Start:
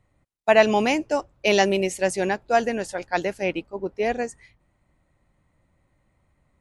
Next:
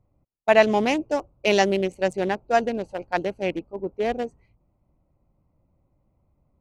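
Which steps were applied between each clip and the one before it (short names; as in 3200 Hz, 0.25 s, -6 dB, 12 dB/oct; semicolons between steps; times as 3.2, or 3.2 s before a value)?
Wiener smoothing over 25 samples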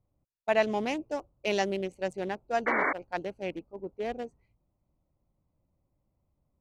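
painted sound noise, 2.66–2.93, 250–2300 Hz -18 dBFS; gain -9 dB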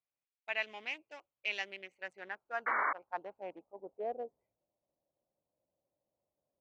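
band-pass sweep 2400 Hz -> 590 Hz, 1.58–4.15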